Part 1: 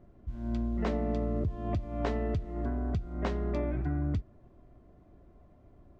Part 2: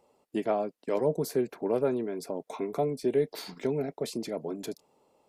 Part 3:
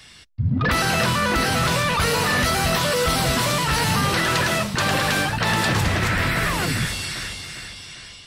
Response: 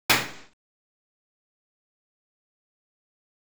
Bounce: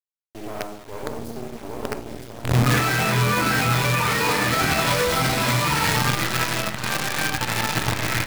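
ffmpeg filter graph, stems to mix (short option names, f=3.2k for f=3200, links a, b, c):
-filter_complex "[0:a]alimiter=level_in=5dB:limit=-24dB:level=0:latency=1:release=205,volume=-5dB,adelay=650,volume=-9.5dB,asplit=2[a][b];[b]volume=-9dB[c];[1:a]highpass=200,volume=-4.5dB,asplit=3[d][e][f];[e]volume=-20dB[g];[2:a]dynaudnorm=f=120:g=17:m=10dB,lowpass=f=12k:w=0.5412,lowpass=f=12k:w=1.3066,alimiter=limit=-8dB:level=0:latency=1:release=251,adelay=2000,volume=-6dB,afade=t=out:st=5.59:d=0.43:silence=0.421697,asplit=2[h][i];[i]volume=-16.5dB[j];[f]apad=whole_len=452728[k];[h][k]sidechaincompress=threshold=-47dB:ratio=8:attack=16:release=406[l];[3:a]atrim=start_sample=2205[m];[c][g][j]amix=inputs=3:normalize=0[n];[n][m]afir=irnorm=-1:irlink=0[o];[a][d][l][o]amix=inputs=4:normalize=0,acrusher=bits=4:dc=4:mix=0:aa=0.000001,alimiter=limit=-11.5dB:level=0:latency=1:release=123"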